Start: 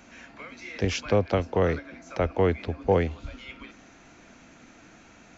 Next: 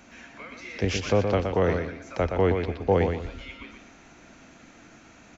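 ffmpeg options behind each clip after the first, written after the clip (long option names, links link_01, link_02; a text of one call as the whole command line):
ffmpeg -i in.wav -af "aecho=1:1:120|240|360|480:0.501|0.145|0.0421|0.0122" out.wav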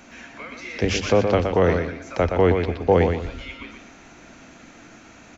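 ffmpeg -i in.wav -af "bandreject=frequency=50:width_type=h:width=6,bandreject=frequency=100:width_type=h:width=6,bandreject=frequency=150:width_type=h:width=6,bandreject=frequency=200:width_type=h:width=6,volume=5dB" out.wav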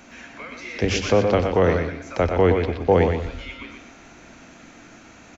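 ffmpeg -i in.wav -af "aecho=1:1:95:0.237" out.wav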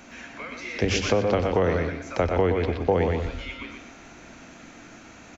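ffmpeg -i in.wav -af "acompressor=threshold=-18dB:ratio=4" out.wav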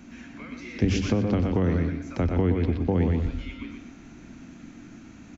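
ffmpeg -i in.wav -af "lowshelf=frequency=370:width_type=q:width=1.5:gain=10,volume=-7dB" out.wav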